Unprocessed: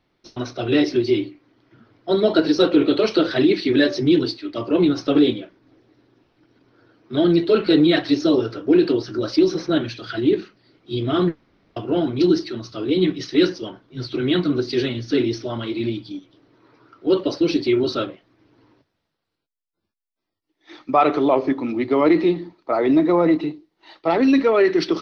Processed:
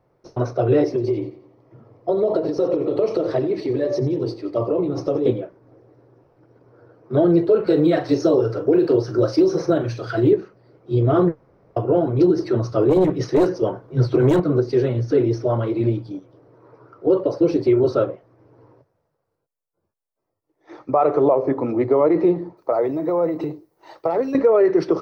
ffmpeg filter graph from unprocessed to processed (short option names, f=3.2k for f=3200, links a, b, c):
-filter_complex "[0:a]asettb=1/sr,asplit=3[a][b][c];[a]atrim=end=0.894[d];[b]atrim=start=0.89:end=5.26,asetpts=PTS-STARTPTS,afade=t=in:d=0.004:c=qsin,afade=t=out:st=4.366:d=0.004:c=qsin,equalizer=f=1.5k:t=o:w=0.2:g=-14.5,acompressor=threshold=-22dB:ratio=10:attack=3.2:release=140:knee=1:detection=peak,aecho=1:1:88|176|264|352:0.2|0.0898|0.0404|0.0182,atrim=end_sample=192717[e];[c]atrim=start=5.256[f];[d][e]acrossfade=d=0.004:c1=hsin:c2=qsin[g];[g][f]acrossfade=d=0.004:c1=qsin:c2=hsin,asettb=1/sr,asplit=3[h][i][j];[h]atrim=end=7.674[k];[i]atrim=start=7.67:end=10.33,asetpts=PTS-STARTPTS,afade=t=in:d=0.004:c=qsin,afade=t=out:st=2.656:d=0.004:c=qsin,highshelf=f=2.9k:g=8.5,asplit=2[l][m];[m]adelay=42,volume=-12dB[n];[l][n]amix=inputs=2:normalize=0,atrim=end_sample=117306[o];[j]atrim=start=10.326[p];[k][o]acrossfade=d=0.004:c1=hsin:c2=qsin[q];[q][p]acrossfade=d=0.004:c1=qsin:c2=hsin,asettb=1/sr,asplit=3[r][s][t];[r]atrim=end=12.384[u];[s]atrim=start=12.38:end=14.4,asetpts=PTS-STARTPTS,afade=t=in:d=0.004:c=qsin,afade=t=out:st=2.016:d=0.004:c=qsin,acontrast=31,aeval=exprs='clip(val(0),-1,0.224)':c=same[v];[t]atrim=start=14.396[w];[u][v]acrossfade=d=0.004:c1=hsin:c2=qsin[x];[x][w]acrossfade=d=0.004:c1=qsin:c2=hsin,asettb=1/sr,asplit=3[y][z][aa];[y]atrim=end=22.574[ab];[z]atrim=start=22.57:end=24.35,asetpts=PTS-STARTPTS,afade=t=in:d=0.004:c=qsin,afade=t=out:st=1.776:d=0.004:c=qsin,aemphasis=mode=production:type=75kf,acompressor=threshold=-23dB:ratio=10:attack=3.2:release=140:knee=1:detection=peak[ac];[aa]atrim=start=24.346[ad];[ab][ac]acrossfade=d=0.004:c1=hsin:c2=qsin[ae];[ae][ad]acrossfade=d=0.004:c1=qsin:c2=hsin,equalizer=f=125:t=o:w=1:g=10,equalizer=f=250:t=o:w=1:g=-6,equalizer=f=500:t=o:w=1:g=12,equalizer=f=1k:t=o:w=1:g=4,equalizer=f=2k:t=o:w=1:g=-3,equalizer=f=4k:t=o:w=1:g=-9,alimiter=limit=-7.5dB:level=0:latency=1:release=223,equalizer=f=3.2k:w=1.7:g=-7.5"